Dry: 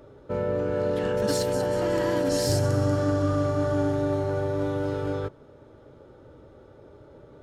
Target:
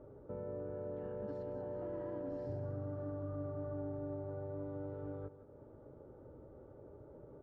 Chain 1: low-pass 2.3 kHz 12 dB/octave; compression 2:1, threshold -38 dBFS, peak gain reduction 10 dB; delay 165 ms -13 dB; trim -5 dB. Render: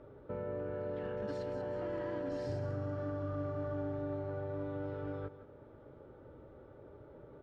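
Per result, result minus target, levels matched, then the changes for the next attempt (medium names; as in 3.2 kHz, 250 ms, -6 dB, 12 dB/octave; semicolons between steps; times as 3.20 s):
2 kHz band +8.5 dB; compression: peak gain reduction -3.5 dB
change: low-pass 920 Hz 12 dB/octave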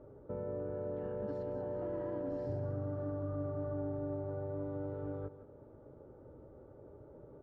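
compression: peak gain reduction -3.5 dB
change: compression 2:1, threshold -45 dBFS, peak gain reduction 13.5 dB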